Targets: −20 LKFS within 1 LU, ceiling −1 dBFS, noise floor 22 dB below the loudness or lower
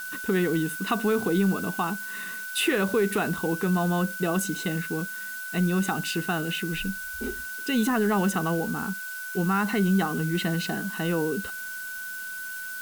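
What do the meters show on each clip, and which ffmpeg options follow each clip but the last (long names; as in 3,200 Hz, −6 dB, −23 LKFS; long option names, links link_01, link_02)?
interfering tone 1,500 Hz; level of the tone −34 dBFS; background noise floor −36 dBFS; target noise floor −49 dBFS; integrated loudness −27.0 LKFS; sample peak −12.5 dBFS; target loudness −20.0 LKFS
→ -af "bandreject=frequency=1500:width=30"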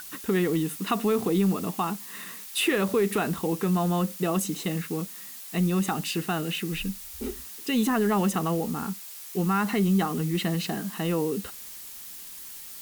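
interfering tone none found; background noise floor −42 dBFS; target noise floor −49 dBFS
→ -af "afftdn=noise_reduction=7:noise_floor=-42"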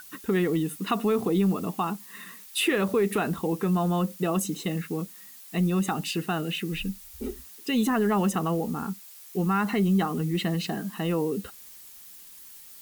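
background noise floor −48 dBFS; target noise floor −50 dBFS
→ -af "afftdn=noise_reduction=6:noise_floor=-48"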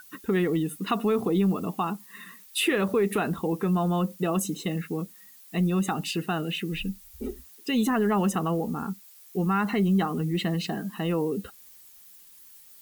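background noise floor −52 dBFS; integrated loudness −27.0 LKFS; sample peak −13.5 dBFS; target loudness −20.0 LKFS
→ -af "volume=7dB"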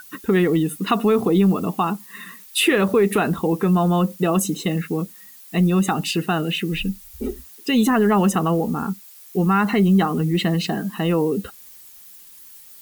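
integrated loudness −20.0 LKFS; sample peak −6.5 dBFS; background noise floor −45 dBFS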